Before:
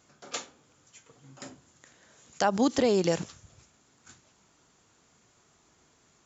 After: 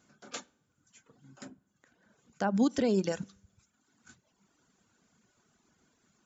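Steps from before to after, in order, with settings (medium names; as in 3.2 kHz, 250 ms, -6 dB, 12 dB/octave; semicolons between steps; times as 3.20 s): feedback comb 98 Hz, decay 0.75 s, harmonics all, mix 40%; small resonant body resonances 210/1500 Hz, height 9 dB, ringing for 30 ms; reverberation, pre-delay 46 ms, DRR 18 dB; reverb removal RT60 0.94 s; 1.44–2.54 s: treble shelf 3.3 kHz -> 2.3 kHz -11 dB; trim -2 dB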